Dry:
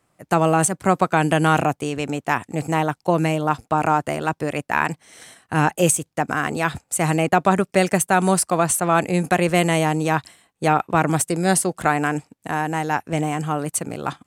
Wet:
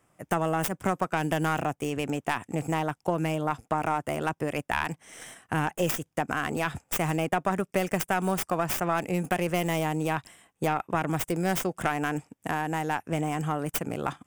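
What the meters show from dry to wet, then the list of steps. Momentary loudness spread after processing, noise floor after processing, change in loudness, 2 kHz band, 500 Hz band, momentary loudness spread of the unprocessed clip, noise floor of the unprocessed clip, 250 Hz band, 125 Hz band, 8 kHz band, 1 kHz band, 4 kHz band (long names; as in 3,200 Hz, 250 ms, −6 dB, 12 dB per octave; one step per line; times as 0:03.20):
4 LU, −74 dBFS, −8.5 dB, −8.0 dB, −8.0 dB, 7 LU, −71 dBFS, −8.0 dB, −8.0 dB, −14.0 dB, −8.5 dB, −6.5 dB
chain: stylus tracing distortion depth 0.32 ms
parametric band 4,200 Hz −13.5 dB 0.23 octaves
downward compressor 2.5 to 1, threshold −27 dBFS, peak gain reduction 10.5 dB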